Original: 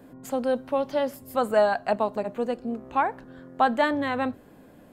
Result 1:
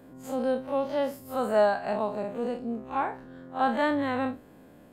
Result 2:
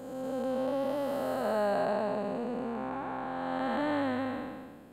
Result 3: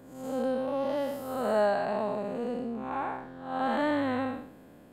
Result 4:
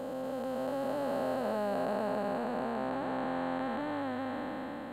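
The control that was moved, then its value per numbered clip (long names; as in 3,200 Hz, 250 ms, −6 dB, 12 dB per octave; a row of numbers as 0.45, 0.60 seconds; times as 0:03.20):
spectrum smeared in time, width: 88, 586, 236, 1,700 milliseconds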